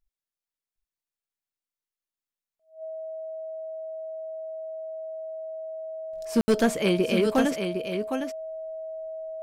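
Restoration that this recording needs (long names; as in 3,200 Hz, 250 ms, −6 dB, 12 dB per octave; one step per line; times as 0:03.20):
clipped peaks rebuilt −14.5 dBFS
notch filter 640 Hz, Q 30
ambience match 0:06.41–0:06.48
echo removal 759 ms −7 dB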